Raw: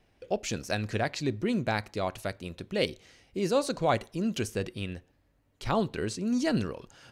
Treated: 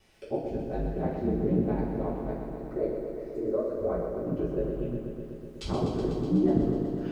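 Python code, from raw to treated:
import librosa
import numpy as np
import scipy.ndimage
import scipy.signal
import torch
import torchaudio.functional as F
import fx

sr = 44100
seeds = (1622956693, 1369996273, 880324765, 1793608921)

p1 = fx.fixed_phaser(x, sr, hz=820.0, stages=6, at=(2.31, 4.27))
p2 = fx.env_lowpass_down(p1, sr, base_hz=450.0, full_db=-39.0)
p3 = fx.high_shelf(p2, sr, hz=2900.0, db=10.5)
p4 = p3 + fx.echo_thinned(p3, sr, ms=161, feedback_pct=71, hz=450.0, wet_db=-15.5, dry=0)
p5 = p4 * np.sin(2.0 * np.pi * 58.0 * np.arange(len(p4)) / sr)
p6 = fx.rev_double_slope(p5, sr, seeds[0], early_s=0.42, late_s=2.3, knee_db=-18, drr_db=-7.5)
p7 = fx.echo_crushed(p6, sr, ms=124, feedback_pct=80, bits=11, wet_db=-7.0)
y = F.gain(torch.from_numpy(p7), -1.5).numpy()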